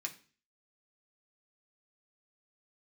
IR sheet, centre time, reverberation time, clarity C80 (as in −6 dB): 8 ms, 0.40 s, 19.0 dB